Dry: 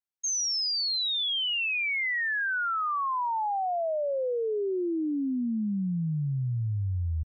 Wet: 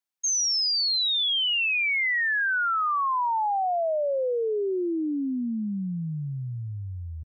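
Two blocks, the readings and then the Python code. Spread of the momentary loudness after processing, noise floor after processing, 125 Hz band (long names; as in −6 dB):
11 LU, −35 dBFS, −3.5 dB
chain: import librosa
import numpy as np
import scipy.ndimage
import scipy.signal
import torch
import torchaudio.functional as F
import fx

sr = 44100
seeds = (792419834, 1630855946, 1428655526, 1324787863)

y = fx.highpass(x, sr, hz=270.0, slope=6)
y = F.gain(torch.from_numpy(y), 4.0).numpy()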